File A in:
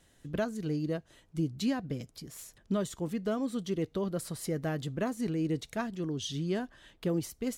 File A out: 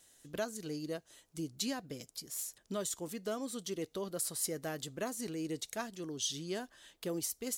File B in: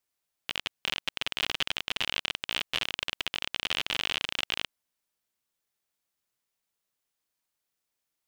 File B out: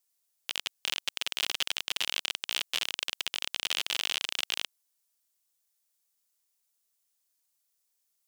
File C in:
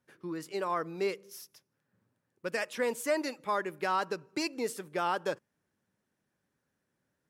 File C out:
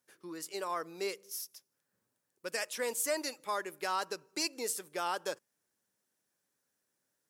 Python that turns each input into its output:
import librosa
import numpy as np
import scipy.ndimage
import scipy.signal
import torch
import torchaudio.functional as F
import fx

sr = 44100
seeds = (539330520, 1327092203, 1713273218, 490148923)

y = fx.bass_treble(x, sr, bass_db=-10, treble_db=12)
y = F.gain(torch.from_numpy(y), -4.0).numpy()